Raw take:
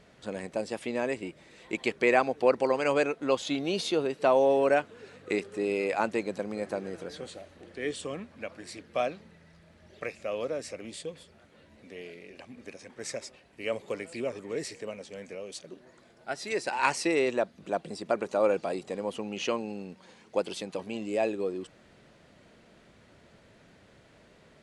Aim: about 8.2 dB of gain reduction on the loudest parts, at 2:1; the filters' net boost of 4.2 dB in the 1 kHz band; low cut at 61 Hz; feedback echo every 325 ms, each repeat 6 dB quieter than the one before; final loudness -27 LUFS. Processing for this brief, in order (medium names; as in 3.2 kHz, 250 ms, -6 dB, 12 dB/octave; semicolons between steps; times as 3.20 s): high-pass 61 Hz; peaking EQ 1 kHz +5.5 dB; compression 2:1, threshold -31 dBFS; feedback delay 325 ms, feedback 50%, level -6 dB; trim +6.5 dB